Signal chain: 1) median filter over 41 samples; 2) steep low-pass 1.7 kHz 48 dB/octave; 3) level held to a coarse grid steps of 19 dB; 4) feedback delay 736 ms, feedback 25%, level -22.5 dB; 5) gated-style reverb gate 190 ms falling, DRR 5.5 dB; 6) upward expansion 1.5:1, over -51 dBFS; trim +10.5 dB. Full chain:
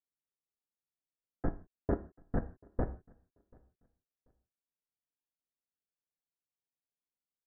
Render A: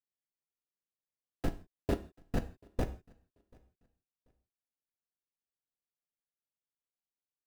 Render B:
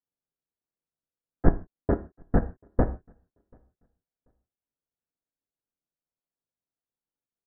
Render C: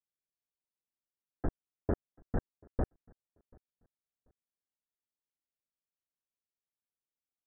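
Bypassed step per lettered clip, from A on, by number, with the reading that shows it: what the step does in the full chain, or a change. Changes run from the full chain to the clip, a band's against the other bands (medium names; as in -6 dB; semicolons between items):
2, 2 kHz band +3.5 dB; 3, crest factor change +3.5 dB; 5, momentary loudness spread change -2 LU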